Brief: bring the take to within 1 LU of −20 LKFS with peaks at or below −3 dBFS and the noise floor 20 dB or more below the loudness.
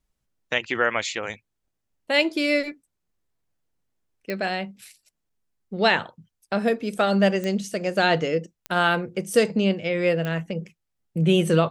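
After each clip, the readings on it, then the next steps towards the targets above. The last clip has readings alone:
number of clicks 4; integrated loudness −23.5 LKFS; sample peak −5.5 dBFS; target loudness −20.0 LKFS
→ click removal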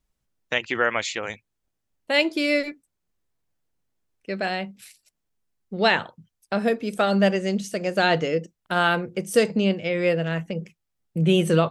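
number of clicks 0; integrated loudness −23.5 LKFS; sample peak −5.5 dBFS; target loudness −20.0 LKFS
→ level +3.5 dB
brickwall limiter −3 dBFS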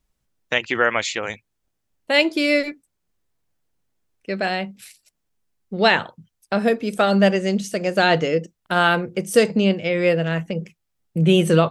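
integrated loudness −20.0 LKFS; sample peak −3.0 dBFS; background noise floor −76 dBFS

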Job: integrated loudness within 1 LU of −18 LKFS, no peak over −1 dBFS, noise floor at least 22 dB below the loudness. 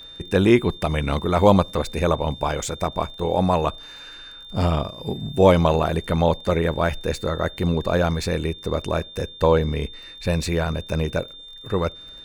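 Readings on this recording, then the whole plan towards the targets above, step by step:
crackle rate 23 per second; interfering tone 3,600 Hz; level of the tone −39 dBFS; integrated loudness −22.5 LKFS; sample peak −2.5 dBFS; target loudness −18.0 LKFS
→ click removal
notch filter 3,600 Hz, Q 30
level +4.5 dB
brickwall limiter −1 dBFS

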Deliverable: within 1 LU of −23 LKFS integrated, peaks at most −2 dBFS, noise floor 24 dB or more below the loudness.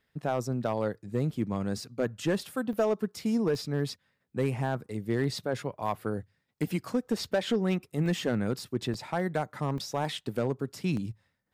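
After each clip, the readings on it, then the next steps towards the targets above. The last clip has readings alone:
share of clipped samples 0.7%; peaks flattened at −19.5 dBFS; number of dropouts 7; longest dropout 1.5 ms; integrated loudness −31.5 LKFS; sample peak −19.5 dBFS; target loudness −23.0 LKFS
→ clipped peaks rebuilt −19.5 dBFS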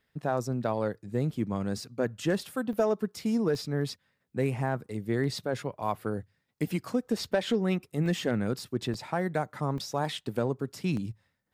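share of clipped samples 0.0%; number of dropouts 7; longest dropout 1.5 ms
→ repair the gap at 0:02.73/0:03.55/0:05.24/0:08.06/0:08.94/0:09.78/0:10.97, 1.5 ms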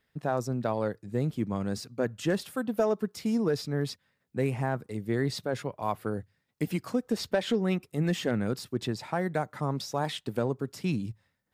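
number of dropouts 0; integrated loudness −31.0 LKFS; sample peak −13.5 dBFS; target loudness −23.0 LKFS
→ level +8 dB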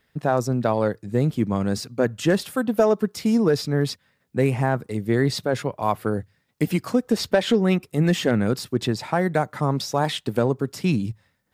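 integrated loudness −23.0 LKFS; sample peak −5.5 dBFS; background noise floor −69 dBFS

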